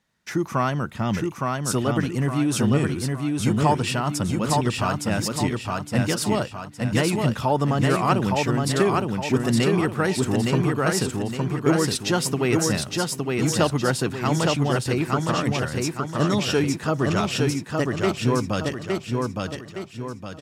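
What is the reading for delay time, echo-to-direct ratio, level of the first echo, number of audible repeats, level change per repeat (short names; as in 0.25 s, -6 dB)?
0.864 s, -2.0 dB, -3.0 dB, 5, -7.5 dB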